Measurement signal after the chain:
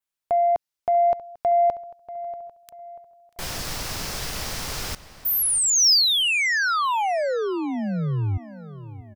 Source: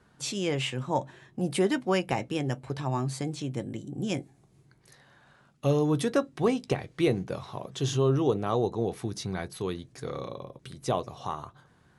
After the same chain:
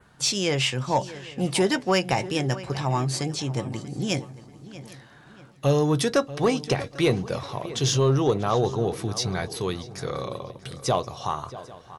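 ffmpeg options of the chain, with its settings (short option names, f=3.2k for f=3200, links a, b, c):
-filter_complex "[0:a]equalizer=f=270:t=o:w=1.5:g=-5,asplit=2[a][b];[b]aecho=0:1:796|1592:0.0794|0.0135[c];[a][c]amix=inputs=2:normalize=0,adynamicequalizer=threshold=0.002:dfrequency=5200:dqfactor=2.2:tfrequency=5200:tqfactor=2.2:attack=5:release=100:ratio=0.375:range=4:mode=boostabove:tftype=bell,asoftclip=type=tanh:threshold=-17dB,asplit=2[d][e];[e]adelay=638,lowpass=f=3.3k:p=1,volume=-15.5dB,asplit=2[f][g];[g]adelay=638,lowpass=f=3.3k:p=1,volume=0.4,asplit=2[h][i];[i]adelay=638,lowpass=f=3.3k:p=1,volume=0.4,asplit=2[j][k];[k]adelay=638,lowpass=f=3.3k:p=1,volume=0.4[l];[f][h][j][l]amix=inputs=4:normalize=0[m];[d][m]amix=inputs=2:normalize=0,volume=7dB"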